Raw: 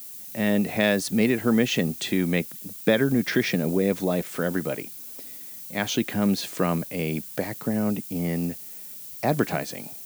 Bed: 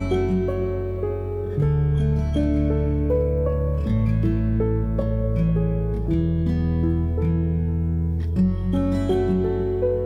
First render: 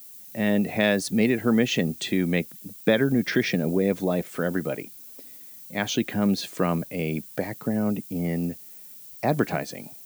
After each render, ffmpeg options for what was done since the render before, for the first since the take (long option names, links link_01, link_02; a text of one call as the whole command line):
ffmpeg -i in.wav -af "afftdn=noise_reduction=6:noise_floor=-40" out.wav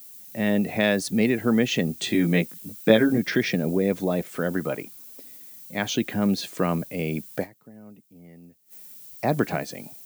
ffmpeg -i in.wav -filter_complex "[0:a]asettb=1/sr,asplit=3[link_01][link_02][link_03];[link_01]atrim=end=1.994[link_04];[link_02]atrim=start=1.99:end=3.18,asetpts=PTS-STARTPTS,afade=type=in:duration=0.004:curve=qsin,afade=type=out:start_time=1.186:duration=0.004:curve=qsin,asplit=2[link_05][link_06];[link_06]adelay=18,volume=-2dB[link_07];[link_05][link_07]amix=inputs=2:normalize=0,atrim=end_sample=52479[link_08];[link_03]atrim=start=3.176[link_09];[link_04][link_08]acrossfade=duration=0.004:curve1=hsin:curve2=qsin[link_10];[link_10][link_09]acrossfade=duration=0.004:curve1=qsin:curve2=hsin,asettb=1/sr,asplit=3[link_11][link_12][link_13];[link_11]atrim=end=4.594[link_14];[link_12]atrim=start=4.59:end=5.04,asetpts=PTS-STARTPTS,afade=type=in:duration=0.004:curve=qsin,afade=type=out:start_time=0.446:duration=0.004:curve=qsin,equalizer=frequency=1100:width_type=o:width=0.79:gain=6.5[link_15];[link_13]atrim=start=5.036[link_16];[link_14][link_15]acrossfade=duration=0.004:curve1=hsin:curve2=qsin[link_17];[link_17][link_16]acrossfade=duration=0.004:curve1=qsin:curve2=hsin,asplit=3[link_18][link_19][link_20];[link_18]atrim=end=7.68,asetpts=PTS-STARTPTS,afade=type=out:start_time=7.43:duration=0.25:curve=exp:silence=0.0891251[link_21];[link_19]atrim=start=7.68:end=8.48,asetpts=PTS-STARTPTS,volume=-21dB[link_22];[link_20]atrim=start=8.48,asetpts=PTS-STARTPTS,afade=type=in:duration=0.25:curve=exp:silence=0.0891251[link_23];[link_21][link_22][link_23]concat=n=3:v=0:a=1" out.wav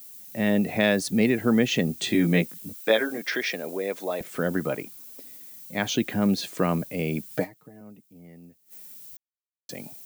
ffmpeg -i in.wav -filter_complex "[0:a]asettb=1/sr,asplit=3[link_01][link_02][link_03];[link_01]atrim=end=2.734[link_04];[link_02]atrim=start=2.73:end=4.21,asetpts=PTS-STARTPTS,afade=type=in:duration=0.004:curve=qsin,afade=type=out:start_time=1.476:duration=0.004:curve=qsin,highpass=530[link_05];[link_03]atrim=start=4.206[link_06];[link_04][link_05]acrossfade=duration=0.004:curve1=hsin:curve2=qsin[link_07];[link_07][link_06]acrossfade=duration=0.004:curve1=qsin:curve2=hsin,asettb=1/sr,asplit=3[link_08][link_09][link_10];[link_08]atrim=end=7.304[link_11];[link_09]atrim=start=7.3:end=7.81,asetpts=PTS-STARTPTS,afade=type=in:duration=0.004:curve=qsin,afade=type=out:start_time=0.506:duration=0.004:curve=qsin,aecho=1:1:6.5:0.7,atrim=end_sample=22491[link_12];[link_10]atrim=start=7.806[link_13];[link_11][link_12]acrossfade=duration=0.004:curve1=hsin:curve2=qsin[link_14];[link_14][link_13]acrossfade=duration=0.004:curve1=qsin:curve2=hsin,asplit=3[link_15][link_16][link_17];[link_15]atrim=end=9.17,asetpts=PTS-STARTPTS,afade=type=out:start_time=9.166:duration=0.004:curve=hsin[link_18];[link_16]atrim=start=9.17:end=9.69,asetpts=PTS-STARTPTS,volume=0[link_19];[link_17]atrim=start=9.69,asetpts=PTS-STARTPTS,afade=type=in:duration=0.004:curve=hsin[link_20];[link_18][link_19][link_20]concat=n=3:v=0:a=1" out.wav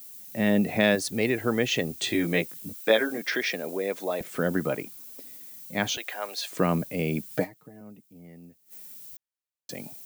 ffmpeg -i in.wav -filter_complex "[0:a]asettb=1/sr,asplit=3[link_01][link_02][link_03];[link_01]atrim=end=0.954[link_04];[link_02]atrim=start=0.95:end=2.58,asetpts=PTS-STARTPTS,afade=type=in:duration=0.004:curve=qsin,afade=type=out:start_time=1.626:duration=0.004:curve=qsin,equalizer=frequency=200:width_type=o:width=0.77:gain=-11[link_05];[link_03]atrim=start=2.576[link_06];[link_04][link_05]acrossfade=duration=0.004:curve1=hsin:curve2=qsin[link_07];[link_07][link_06]acrossfade=duration=0.004:curve1=qsin:curve2=hsin,asettb=1/sr,asplit=3[link_08][link_09][link_10];[link_08]atrim=end=5.974[link_11];[link_09]atrim=start=5.97:end=6.51,asetpts=PTS-STARTPTS,afade=type=in:duration=0.004:curve=qsin,afade=type=out:start_time=0.536:duration=0.004:curve=qsin,highpass=frequency=600:width=0.5412,highpass=frequency=600:width=1.3066[link_12];[link_10]atrim=start=6.506[link_13];[link_11][link_12]acrossfade=duration=0.004:curve1=hsin:curve2=qsin[link_14];[link_14][link_13]acrossfade=duration=0.004:curve1=qsin:curve2=hsin" out.wav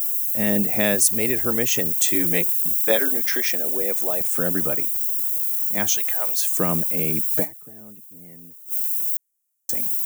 ffmpeg -i in.wav -af "aexciter=amount=9.5:drive=2.8:freq=6100" out.wav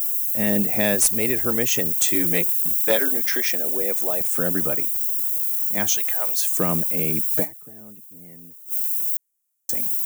ffmpeg -i in.wav -af "aeval=exprs='clip(val(0),-1,0.251)':channel_layout=same" out.wav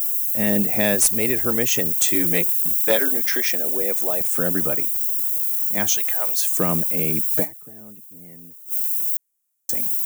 ffmpeg -i in.wav -af "volume=1dB" out.wav